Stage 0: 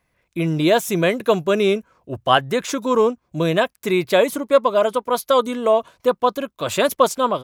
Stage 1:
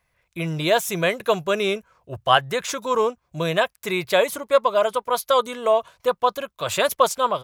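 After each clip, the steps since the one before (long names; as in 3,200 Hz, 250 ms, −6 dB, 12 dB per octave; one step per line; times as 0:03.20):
parametric band 270 Hz −12.5 dB 1.1 octaves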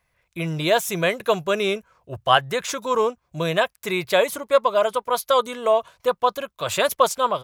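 no processing that can be heard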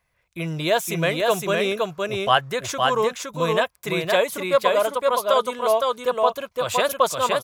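single-tap delay 514 ms −3 dB
level −1.5 dB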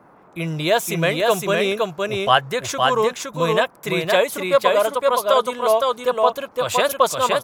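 noise in a band 120–1,200 Hz −53 dBFS
level +2.5 dB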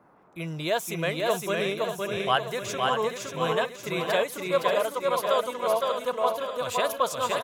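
repeating echo 585 ms, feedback 53%, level −7.5 dB
level −8.5 dB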